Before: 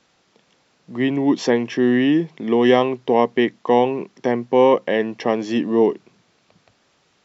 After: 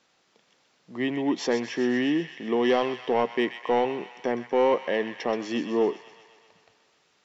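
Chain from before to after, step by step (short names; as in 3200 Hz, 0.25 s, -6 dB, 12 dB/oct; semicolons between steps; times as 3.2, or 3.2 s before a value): low shelf 210 Hz -9 dB; soft clip -8.5 dBFS, distortion -18 dB; thin delay 0.127 s, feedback 68%, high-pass 1500 Hz, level -8 dB; gain -4.5 dB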